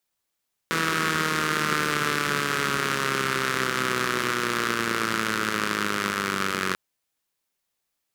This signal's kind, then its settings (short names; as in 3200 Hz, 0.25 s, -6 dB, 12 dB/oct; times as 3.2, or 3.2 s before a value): four-cylinder engine model, changing speed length 6.04 s, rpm 4900, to 2800, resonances 210/360/1300 Hz